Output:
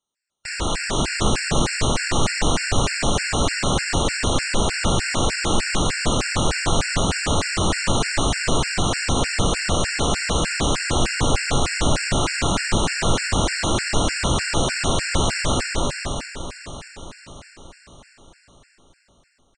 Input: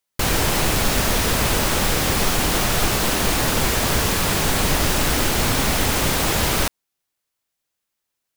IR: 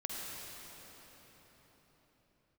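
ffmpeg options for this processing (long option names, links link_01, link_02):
-filter_complex "[0:a]aecho=1:1:267|534|801|1068|1335|1602:0.266|0.138|0.0719|0.0374|0.0195|0.0101[link_01];[1:a]atrim=start_sample=2205,afade=type=out:start_time=0.36:duration=0.01,atrim=end_sample=16317[link_02];[link_01][link_02]afir=irnorm=-1:irlink=0,asetrate=18846,aresample=44100,afftfilt=real='re*gt(sin(2*PI*3.3*pts/sr)*(1-2*mod(floor(b*sr/1024/1400),2)),0)':imag='im*gt(sin(2*PI*3.3*pts/sr)*(1-2*mod(floor(b*sr/1024/1400),2)),0)':win_size=1024:overlap=0.75,volume=1dB"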